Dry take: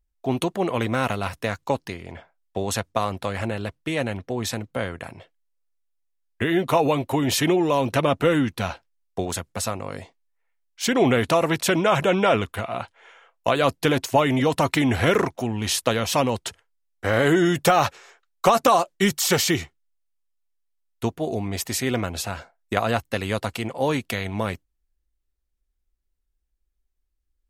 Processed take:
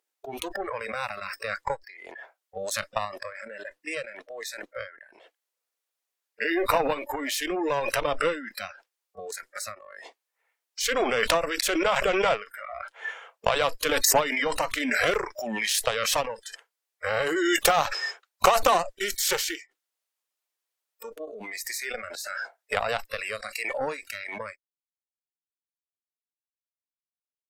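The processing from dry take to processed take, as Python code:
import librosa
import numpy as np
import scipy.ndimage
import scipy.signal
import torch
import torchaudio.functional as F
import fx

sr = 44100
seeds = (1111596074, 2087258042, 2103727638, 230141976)

y = scipy.signal.sosfilt(scipy.signal.butter(4, 380.0, 'highpass', fs=sr, output='sos'), x)
y = fx.cheby_harmonics(y, sr, harmonics=(3, 6, 7), levels_db=(-20, -25, -29), full_scale_db=-4.5)
y = fx.noise_reduce_blind(y, sr, reduce_db=24)
y = fx.pre_swell(y, sr, db_per_s=22.0)
y = y * 10.0 ** (-1.5 / 20.0)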